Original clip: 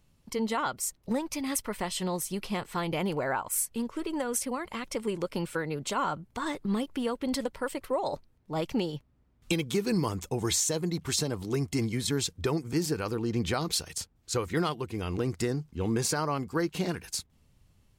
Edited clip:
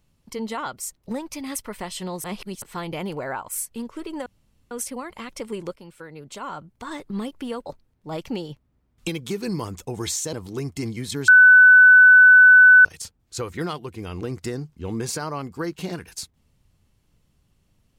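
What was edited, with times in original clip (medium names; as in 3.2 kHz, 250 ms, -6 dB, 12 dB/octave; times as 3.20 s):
2.24–2.62 s: reverse
4.26 s: insert room tone 0.45 s
5.31–6.70 s: fade in, from -14 dB
7.21–8.10 s: delete
10.77–11.29 s: delete
12.24–13.81 s: bleep 1.5 kHz -7 dBFS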